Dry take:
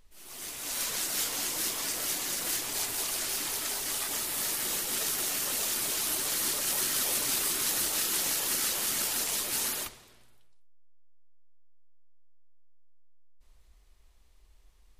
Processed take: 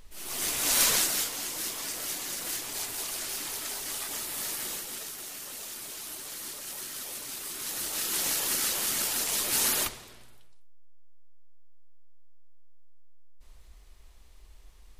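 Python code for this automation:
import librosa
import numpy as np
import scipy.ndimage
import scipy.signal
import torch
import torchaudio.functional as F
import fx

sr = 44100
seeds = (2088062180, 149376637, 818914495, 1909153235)

y = fx.gain(x, sr, db=fx.line((0.91, 9.5), (1.33, -2.5), (4.62, -2.5), (5.13, -9.5), (7.39, -9.5), (8.26, 1.0), (9.25, 1.0), (9.87, 7.5)))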